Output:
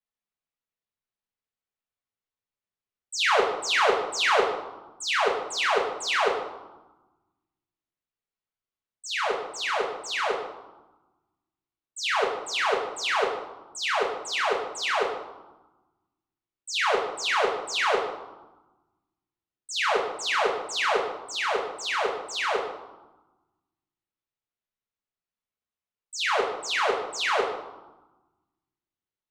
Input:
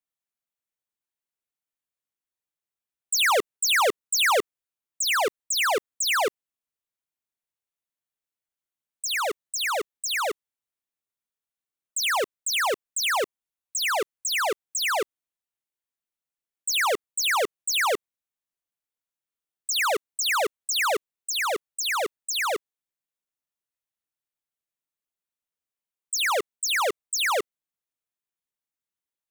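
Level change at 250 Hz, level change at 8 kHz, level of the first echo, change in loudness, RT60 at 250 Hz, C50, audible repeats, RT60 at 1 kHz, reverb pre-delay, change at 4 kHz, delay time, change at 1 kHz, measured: +1.0 dB, -9.0 dB, no echo, -1.5 dB, 1.6 s, 5.0 dB, no echo, 1.2 s, 5 ms, -2.5 dB, no echo, +1.0 dB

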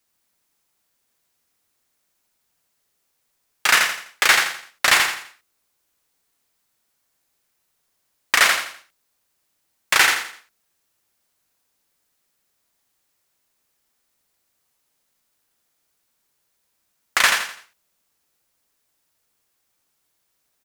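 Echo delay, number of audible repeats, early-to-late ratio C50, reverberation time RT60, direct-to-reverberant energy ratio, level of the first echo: 84 ms, 4, no reverb, no reverb, no reverb, -5.0 dB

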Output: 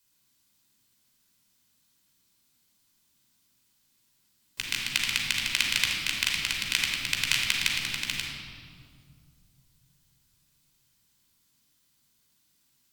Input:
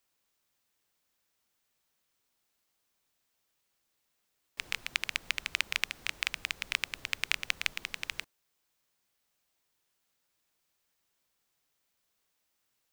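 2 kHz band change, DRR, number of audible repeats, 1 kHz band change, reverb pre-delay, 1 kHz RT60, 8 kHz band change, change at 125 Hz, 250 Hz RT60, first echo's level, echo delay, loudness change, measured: +5.5 dB, -1.5 dB, no echo, +3.5 dB, 16 ms, 2.0 s, +10.5 dB, +14.0 dB, 3.2 s, no echo, no echo, +7.0 dB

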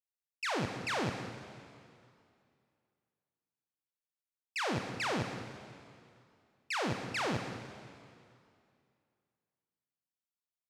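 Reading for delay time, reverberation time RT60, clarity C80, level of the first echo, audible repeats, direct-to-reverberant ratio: 196 ms, 2.4 s, 7.0 dB, -13.0 dB, 1, 5.0 dB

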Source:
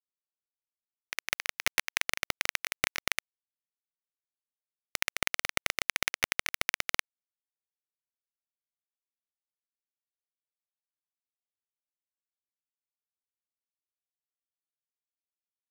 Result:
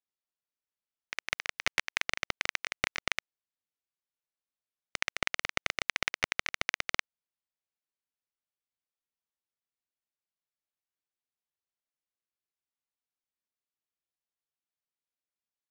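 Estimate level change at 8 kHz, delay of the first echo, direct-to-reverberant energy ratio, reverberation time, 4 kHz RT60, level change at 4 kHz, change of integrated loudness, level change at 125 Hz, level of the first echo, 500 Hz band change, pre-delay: -5.5 dB, no echo, no reverb, no reverb, no reverb, -1.5 dB, -1.5 dB, 0.0 dB, no echo, 0.0 dB, no reverb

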